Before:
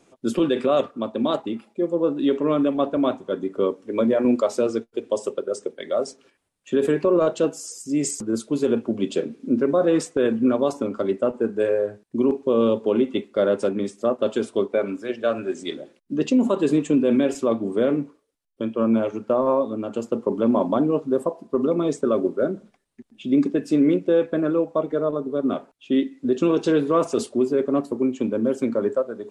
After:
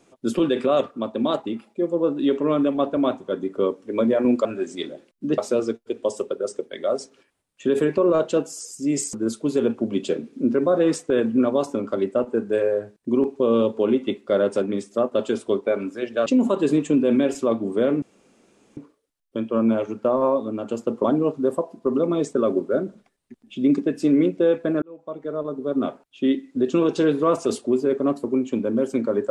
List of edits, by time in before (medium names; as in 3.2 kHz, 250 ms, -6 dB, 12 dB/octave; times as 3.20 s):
15.33–16.26 s: move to 4.45 s
18.02 s: insert room tone 0.75 s
20.29–20.72 s: delete
24.50–25.45 s: fade in